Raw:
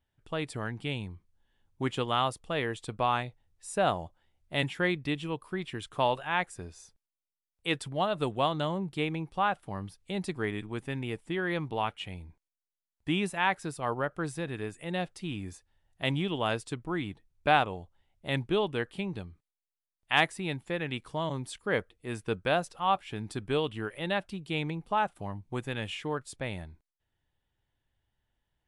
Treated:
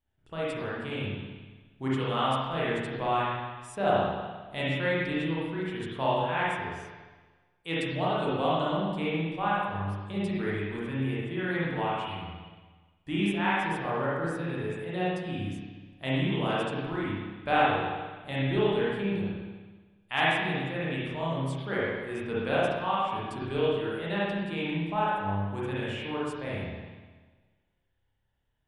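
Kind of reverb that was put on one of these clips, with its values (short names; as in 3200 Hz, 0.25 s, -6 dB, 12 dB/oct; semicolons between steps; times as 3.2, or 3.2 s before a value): spring tank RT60 1.4 s, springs 30/49/60 ms, chirp 65 ms, DRR -8 dB; gain -7 dB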